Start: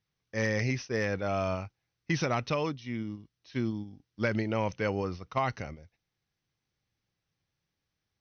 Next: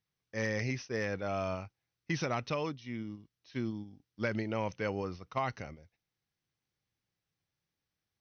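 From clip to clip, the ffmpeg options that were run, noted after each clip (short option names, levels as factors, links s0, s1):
-af "lowshelf=f=66:g=-5.5,volume=0.631"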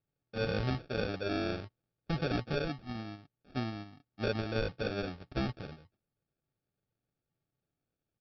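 -af "aecho=1:1:7.2:0.39,aresample=11025,acrusher=samples=11:mix=1:aa=0.000001,aresample=44100"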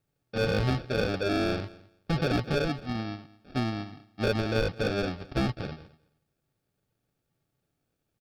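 -filter_complex "[0:a]asplit=2[s0][s1];[s1]aeval=exprs='0.02*(abs(mod(val(0)/0.02+3,4)-2)-1)':c=same,volume=0.355[s2];[s0][s2]amix=inputs=2:normalize=0,aecho=1:1:213|426:0.0891|0.0143,volume=1.88"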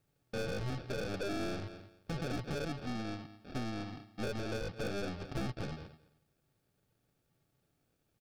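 -af "acompressor=threshold=0.02:ratio=8,aeval=exprs='(tanh(70.8*val(0)+0.5)-tanh(0.5))/70.8':c=same,volume=1.58"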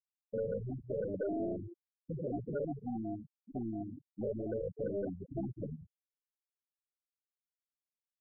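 -af "asoftclip=type=tanh:threshold=0.015,afftfilt=real='re*gte(hypot(re,im),0.0282)':imag='im*gte(hypot(re,im),0.0282)':win_size=1024:overlap=0.75,aemphasis=mode=production:type=bsi,volume=2.99"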